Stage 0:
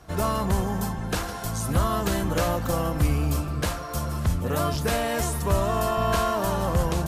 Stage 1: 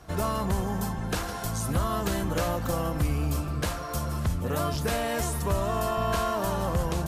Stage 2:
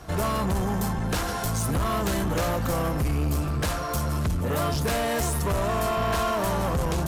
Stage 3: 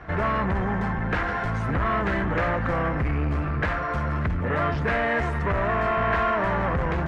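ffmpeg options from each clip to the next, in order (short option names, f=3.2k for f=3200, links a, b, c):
-af "acompressor=threshold=-29dB:ratio=1.5"
-af "asoftclip=type=tanh:threshold=-27.5dB,volume=6.5dB"
-af "lowpass=f=1.9k:t=q:w=2.8"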